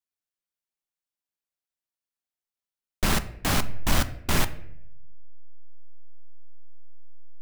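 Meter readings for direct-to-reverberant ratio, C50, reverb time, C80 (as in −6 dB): 11.0 dB, 15.5 dB, 0.75 s, 18.0 dB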